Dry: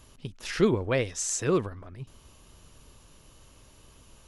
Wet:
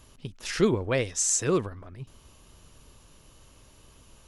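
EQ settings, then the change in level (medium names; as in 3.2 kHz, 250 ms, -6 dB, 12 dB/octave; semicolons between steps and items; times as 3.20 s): dynamic bell 7.7 kHz, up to +6 dB, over -46 dBFS, Q 0.91; 0.0 dB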